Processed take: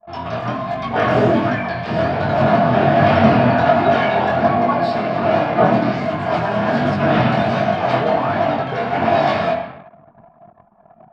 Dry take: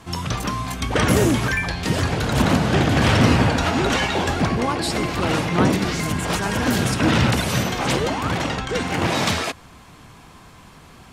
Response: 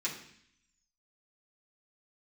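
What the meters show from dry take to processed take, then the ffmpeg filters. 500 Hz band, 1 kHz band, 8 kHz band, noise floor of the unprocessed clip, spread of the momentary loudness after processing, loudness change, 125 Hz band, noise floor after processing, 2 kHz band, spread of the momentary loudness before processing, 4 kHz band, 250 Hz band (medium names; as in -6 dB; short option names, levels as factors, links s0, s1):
+8.5 dB, +7.5 dB, under -20 dB, -46 dBFS, 8 LU, +3.5 dB, -0.5 dB, -49 dBFS, +1.0 dB, 7 LU, -5.5 dB, +2.0 dB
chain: -filter_complex "[1:a]atrim=start_sample=2205,asetrate=29547,aresample=44100[s0];[0:a][s0]afir=irnorm=-1:irlink=0,flanger=delay=20:depth=5:speed=1.3,highpass=130,lowpass=2500,equalizer=f=670:t=o:w=0.4:g=15,anlmdn=6.31,volume=0.75"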